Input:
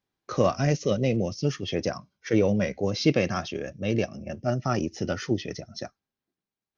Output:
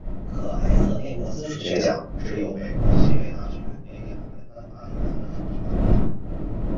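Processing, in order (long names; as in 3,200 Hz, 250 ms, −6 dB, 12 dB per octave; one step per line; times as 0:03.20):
source passing by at 0:01.75, 16 m/s, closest 2 metres
wind on the microphone 180 Hz −32 dBFS
comb and all-pass reverb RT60 0.44 s, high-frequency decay 0.5×, pre-delay 20 ms, DRR −10 dB
level −1.5 dB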